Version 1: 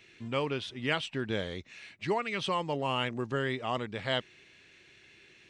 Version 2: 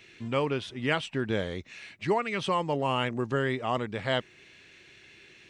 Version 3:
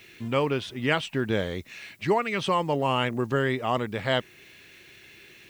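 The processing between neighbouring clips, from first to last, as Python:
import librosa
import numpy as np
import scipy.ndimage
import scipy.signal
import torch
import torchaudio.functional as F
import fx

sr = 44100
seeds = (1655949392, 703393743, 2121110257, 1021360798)

y1 = fx.dynamic_eq(x, sr, hz=3800.0, q=0.89, threshold_db=-49.0, ratio=4.0, max_db=-5)
y1 = F.gain(torch.from_numpy(y1), 4.0).numpy()
y2 = fx.dmg_noise_colour(y1, sr, seeds[0], colour='blue', level_db=-67.0)
y2 = F.gain(torch.from_numpy(y2), 3.0).numpy()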